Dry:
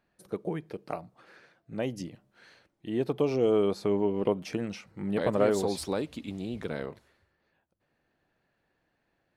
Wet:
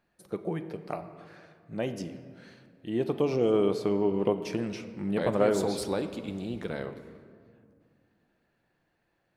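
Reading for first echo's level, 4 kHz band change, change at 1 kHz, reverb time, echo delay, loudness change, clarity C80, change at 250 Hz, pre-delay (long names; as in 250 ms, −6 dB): no echo audible, +0.5 dB, +0.5 dB, 2.2 s, no echo audible, +0.5 dB, 12.0 dB, +1.0 dB, 6 ms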